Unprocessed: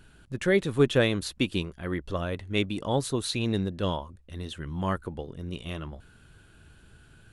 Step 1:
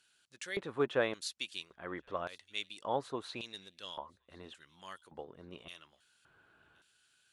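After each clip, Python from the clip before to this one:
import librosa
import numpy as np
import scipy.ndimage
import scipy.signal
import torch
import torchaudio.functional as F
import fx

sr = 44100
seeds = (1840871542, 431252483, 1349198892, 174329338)

y = fx.filter_lfo_bandpass(x, sr, shape='square', hz=0.88, low_hz=980.0, high_hz=5700.0, q=0.98)
y = fx.echo_wet_highpass(y, sr, ms=1070, feedback_pct=31, hz=2800.0, wet_db=-23)
y = y * librosa.db_to_amplitude(-2.5)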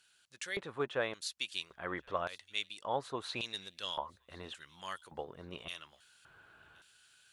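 y = fx.peak_eq(x, sr, hz=280.0, db=-5.5, octaves=1.6)
y = fx.rider(y, sr, range_db=4, speed_s=0.5)
y = y * librosa.db_to_amplitude(2.5)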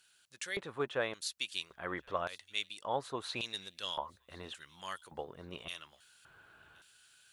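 y = fx.high_shelf(x, sr, hz=9800.0, db=6.0)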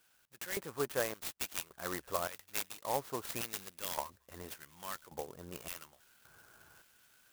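y = scipy.signal.sosfilt(scipy.signal.butter(2, 6200.0, 'lowpass', fs=sr, output='sos'), x)
y = fx.clock_jitter(y, sr, seeds[0], jitter_ms=0.078)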